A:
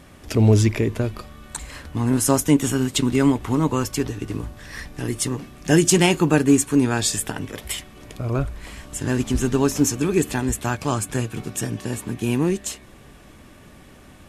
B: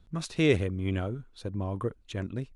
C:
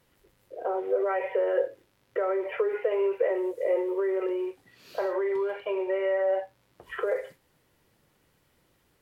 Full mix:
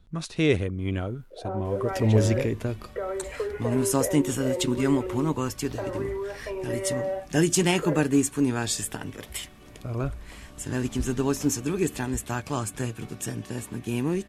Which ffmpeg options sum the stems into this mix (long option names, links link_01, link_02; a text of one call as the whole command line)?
ffmpeg -i stem1.wav -i stem2.wav -i stem3.wav -filter_complex "[0:a]adelay=1650,volume=-6dB[link_01];[1:a]volume=1.5dB[link_02];[2:a]adelay=800,volume=-4dB[link_03];[link_01][link_02][link_03]amix=inputs=3:normalize=0" out.wav